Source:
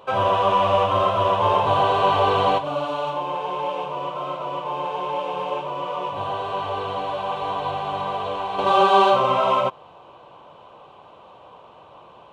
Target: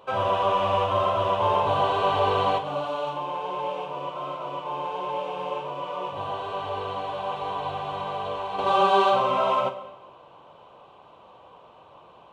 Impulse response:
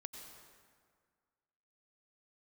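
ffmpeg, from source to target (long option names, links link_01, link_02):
-filter_complex "[0:a]asplit=2[link_01][link_02];[1:a]atrim=start_sample=2205,asetrate=79380,aresample=44100,adelay=43[link_03];[link_02][link_03]afir=irnorm=-1:irlink=0,volume=-0.5dB[link_04];[link_01][link_04]amix=inputs=2:normalize=0,volume=-4.5dB"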